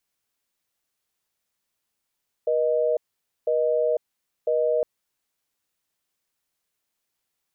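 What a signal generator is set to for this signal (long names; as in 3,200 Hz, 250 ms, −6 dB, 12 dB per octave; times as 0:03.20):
call progress tone busy tone, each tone −22 dBFS 2.36 s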